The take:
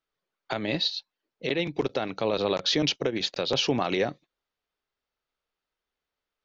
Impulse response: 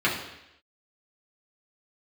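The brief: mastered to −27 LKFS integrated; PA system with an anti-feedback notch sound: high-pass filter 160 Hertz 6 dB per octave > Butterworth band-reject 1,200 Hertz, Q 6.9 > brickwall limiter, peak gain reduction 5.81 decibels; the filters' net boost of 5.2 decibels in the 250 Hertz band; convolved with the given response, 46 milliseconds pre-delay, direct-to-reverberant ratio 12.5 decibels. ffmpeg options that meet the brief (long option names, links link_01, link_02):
-filter_complex "[0:a]equalizer=frequency=250:width_type=o:gain=8.5,asplit=2[link_01][link_02];[1:a]atrim=start_sample=2205,adelay=46[link_03];[link_02][link_03]afir=irnorm=-1:irlink=0,volume=-27.5dB[link_04];[link_01][link_04]amix=inputs=2:normalize=0,highpass=frequency=160:poles=1,asuperstop=centerf=1200:order=8:qfactor=6.9,volume=1dB,alimiter=limit=-15.5dB:level=0:latency=1"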